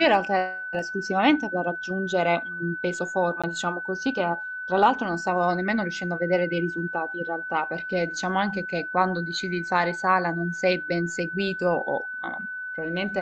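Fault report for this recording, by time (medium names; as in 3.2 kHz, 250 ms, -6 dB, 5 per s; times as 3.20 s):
whine 1.5 kHz -31 dBFS
3.42–3.44 s: dropout 16 ms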